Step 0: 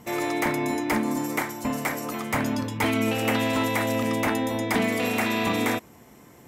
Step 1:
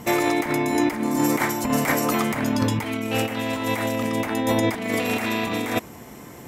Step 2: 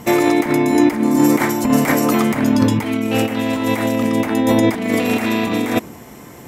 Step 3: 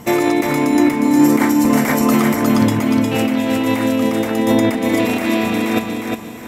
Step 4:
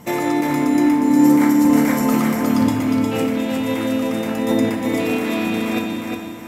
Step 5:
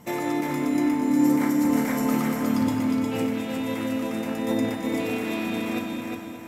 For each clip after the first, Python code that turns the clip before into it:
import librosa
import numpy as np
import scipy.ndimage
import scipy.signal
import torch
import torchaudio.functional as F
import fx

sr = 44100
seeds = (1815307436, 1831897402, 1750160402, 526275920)

y1 = fx.over_compress(x, sr, threshold_db=-28.0, ratio=-0.5)
y1 = y1 * 10.0 ** (6.0 / 20.0)
y2 = fx.dynamic_eq(y1, sr, hz=260.0, q=0.79, threshold_db=-36.0, ratio=4.0, max_db=6)
y2 = y2 * 10.0 ** (3.0 / 20.0)
y3 = fx.echo_feedback(y2, sr, ms=358, feedback_pct=35, wet_db=-4)
y3 = y3 * 10.0 ** (-1.0 / 20.0)
y4 = fx.rev_fdn(y3, sr, rt60_s=2.1, lf_ratio=0.9, hf_ratio=0.5, size_ms=33.0, drr_db=2.0)
y4 = y4 * 10.0 ** (-6.0 / 20.0)
y5 = y4 + 10.0 ** (-10.0 / 20.0) * np.pad(y4, (int(216 * sr / 1000.0), 0))[:len(y4)]
y5 = y5 * 10.0 ** (-7.0 / 20.0)